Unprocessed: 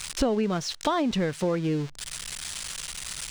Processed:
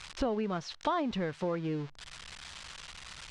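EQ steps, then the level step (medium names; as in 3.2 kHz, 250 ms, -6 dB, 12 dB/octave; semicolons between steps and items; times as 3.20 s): low-pass 4.6 kHz 12 dB/octave; peaking EQ 79 Hz +6.5 dB 0.25 oct; peaking EQ 1 kHz +4.5 dB 1.4 oct; -8.0 dB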